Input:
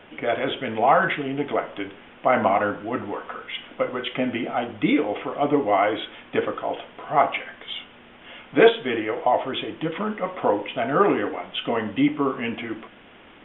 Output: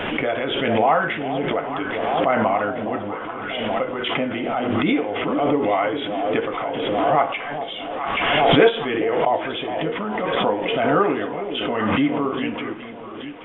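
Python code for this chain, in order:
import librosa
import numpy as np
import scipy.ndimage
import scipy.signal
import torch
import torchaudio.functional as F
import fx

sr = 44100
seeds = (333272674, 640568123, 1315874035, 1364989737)

y = fx.dmg_noise_band(x, sr, seeds[0], low_hz=180.0, high_hz=1300.0, level_db=-42.0, at=(1.51, 2.47), fade=0.02)
y = fx.echo_alternate(y, sr, ms=414, hz=830.0, feedback_pct=71, wet_db=-9.0)
y = fx.pre_swell(y, sr, db_per_s=24.0)
y = y * 10.0 ** (-1.0 / 20.0)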